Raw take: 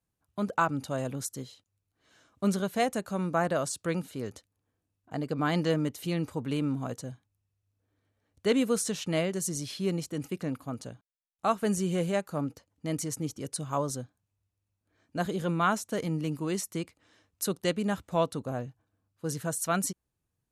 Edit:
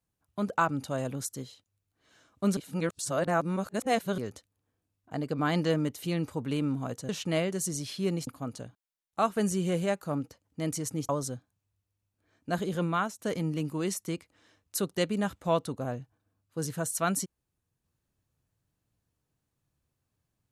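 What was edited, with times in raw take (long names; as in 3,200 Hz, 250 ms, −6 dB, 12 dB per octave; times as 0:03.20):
0:02.57–0:04.18: reverse
0:07.09–0:08.90: remove
0:10.08–0:10.53: remove
0:13.35–0:13.76: remove
0:15.51–0:15.86: fade out linear, to −10.5 dB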